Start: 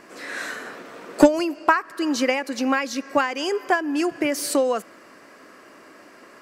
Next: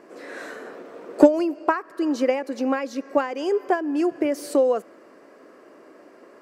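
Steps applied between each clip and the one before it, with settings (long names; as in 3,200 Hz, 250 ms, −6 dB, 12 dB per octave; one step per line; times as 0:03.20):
parametric band 440 Hz +14 dB 2.3 octaves
level −11 dB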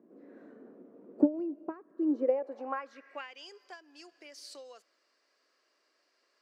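band-pass filter sweep 220 Hz → 4,600 Hz, 0:01.91–0:03.52
level −4 dB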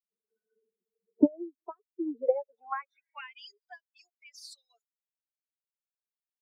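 spectral dynamics exaggerated over time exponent 3
level +5 dB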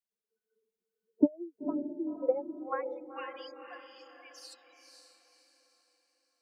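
feedback delay with all-pass diffusion 514 ms, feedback 41%, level −6 dB
level −2.5 dB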